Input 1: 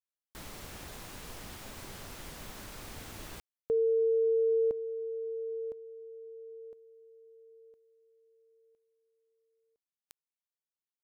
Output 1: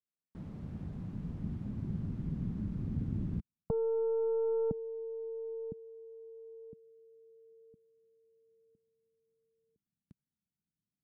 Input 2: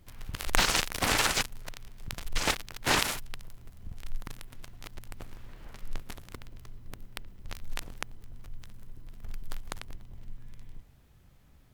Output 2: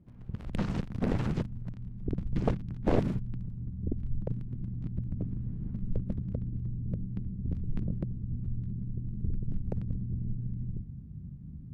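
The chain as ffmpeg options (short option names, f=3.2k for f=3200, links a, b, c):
-af "asubboost=boost=11:cutoff=190,bandpass=f=190:t=q:w=1.8:csg=0,aeval=exprs='0.178*(cos(1*acos(clip(val(0)/0.178,-1,1)))-cos(1*PI/2))+0.0501*(cos(3*acos(clip(val(0)/0.178,-1,1)))-cos(3*PI/2))+0.0316*(cos(6*acos(clip(val(0)/0.178,-1,1)))-cos(6*PI/2))+0.0501*(cos(7*acos(clip(val(0)/0.178,-1,1)))-cos(7*PI/2))':c=same,volume=3dB"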